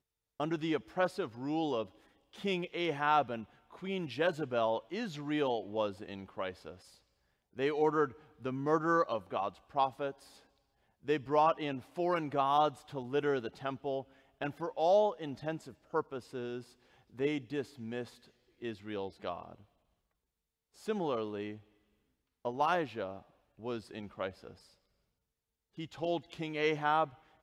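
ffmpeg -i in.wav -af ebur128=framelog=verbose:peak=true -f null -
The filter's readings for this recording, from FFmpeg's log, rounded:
Integrated loudness:
  I:         -34.8 LUFS
  Threshold: -45.6 LUFS
Loudness range:
  LRA:         8.8 LU
  Threshold: -56.0 LUFS
  LRA low:   -41.9 LUFS
  LRA high:  -33.1 LUFS
True peak:
  Peak:      -15.8 dBFS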